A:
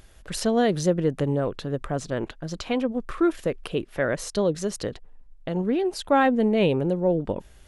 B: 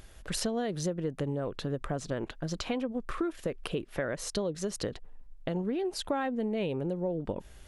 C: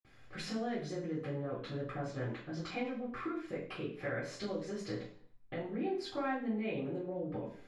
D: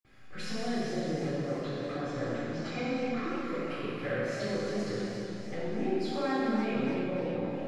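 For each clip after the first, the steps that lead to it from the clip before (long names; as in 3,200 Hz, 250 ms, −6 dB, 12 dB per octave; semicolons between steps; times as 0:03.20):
downward compressor 6 to 1, threshold −29 dBFS, peak gain reduction 13 dB
convolution reverb RT60 0.55 s, pre-delay 47 ms
four-comb reverb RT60 3 s, combs from 30 ms, DRR −4 dB; feedback echo with a swinging delay time 285 ms, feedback 58%, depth 200 cents, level −11 dB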